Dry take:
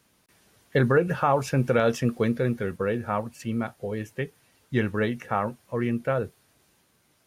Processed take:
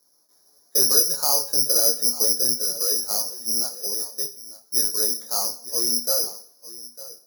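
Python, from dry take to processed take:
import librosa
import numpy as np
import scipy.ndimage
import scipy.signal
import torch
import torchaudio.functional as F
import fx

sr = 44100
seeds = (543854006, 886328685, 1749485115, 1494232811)

p1 = scipy.signal.sosfilt(scipy.signal.bessel(4, 900.0, 'lowpass', norm='mag', fs=sr, output='sos'), x)
p2 = (np.kron(scipy.signal.resample_poly(p1, 1, 8), np.eye(8)[0]) * 8)[:len(p1)]
p3 = 10.0 ** (-24.5 / 20.0) * np.tanh(p2 / 10.0 ** (-24.5 / 20.0))
p4 = p2 + (p3 * librosa.db_to_amplitude(-11.0))
p5 = scipy.signal.sosfilt(scipy.signal.butter(2, 400.0, 'highpass', fs=sr, output='sos'), p4)
p6 = p5 + fx.echo_single(p5, sr, ms=902, db=-16.5, dry=0)
p7 = fx.rev_double_slope(p6, sr, seeds[0], early_s=0.6, late_s=1.7, knee_db=-26, drr_db=10.5)
p8 = fx.detune_double(p7, sr, cents=11)
y = p8 * librosa.db_to_amplitude(-1.0)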